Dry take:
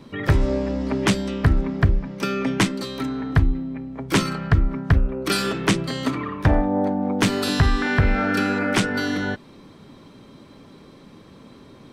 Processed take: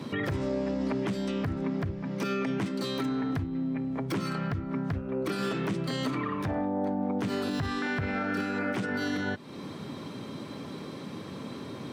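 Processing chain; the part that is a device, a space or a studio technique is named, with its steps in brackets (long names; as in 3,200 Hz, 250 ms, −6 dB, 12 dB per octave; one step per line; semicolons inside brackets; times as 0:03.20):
podcast mastering chain (high-pass filter 91 Hz 24 dB per octave; de-essing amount 85%; downward compressor 2.5 to 1, threshold −38 dBFS, peak gain reduction 16 dB; brickwall limiter −28.5 dBFS, peak gain reduction 7.5 dB; level +7 dB; MP3 128 kbit/s 48,000 Hz)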